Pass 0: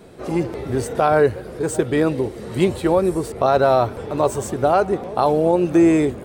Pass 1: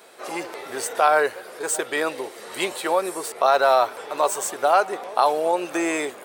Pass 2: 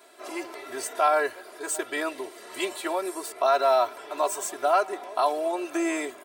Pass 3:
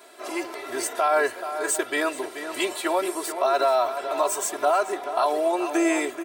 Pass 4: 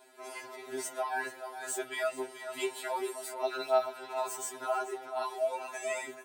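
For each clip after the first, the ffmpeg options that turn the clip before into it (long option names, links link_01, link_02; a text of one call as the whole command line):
ffmpeg -i in.wav -af "highpass=820,highshelf=frequency=9800:gain=5.5,volume=3.5dB" out.wav
ffmpeg -i in.wav -af "aecho=1:1:3:0.93,volume=-7.5dB" out.wav
ffmpeg -i in.wav -filter_complex "[0:a]alimiter=limit=-16.5dB:level=0:latency=1:release=62,asplit=2[link_01][link_02];[link_02]adelay=431.5,volume=-9dB,highshelf=frequency=4000:gain=-9.71[link_03];[link_01][link_03]amix=inputs=2:normalize=0,volume=4.5dB" out.wav
ffmpeg -i in.wav -af "afftfilt=real='re*2.45*eq(mod(b,6),0)':imag='im*2.45*eq(mod(b,6),0)':win_size=2048:overlap=0.75,volume=-8dB" out.wav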